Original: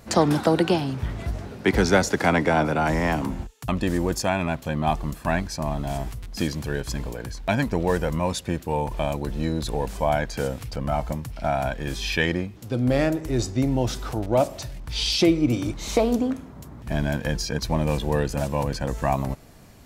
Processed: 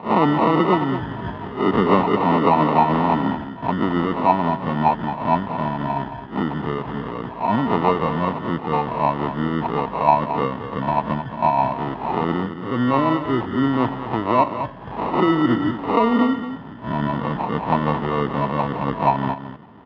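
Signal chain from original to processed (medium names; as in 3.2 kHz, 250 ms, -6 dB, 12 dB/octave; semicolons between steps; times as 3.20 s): reverse spectral sustain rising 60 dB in 0.34 s; bass shelf 370 Hz +9.5 dB; in parallel at +2 dB: peak limiter -11.5 dBFS, peak gain reduction 10 dB; on the sum: rotary cabinet horn 6.7 Hz; sample-and-hold 27×; cabinet simulation 270–2500 Hz, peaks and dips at 340 Hz -4 dB, 530 Hz -6 dB, 940 Hz +9 dB, 1.5 kHz -9 dB, 2.3 kHz -10 dB; delay 220 ms -10.5 dB; trim -1 dB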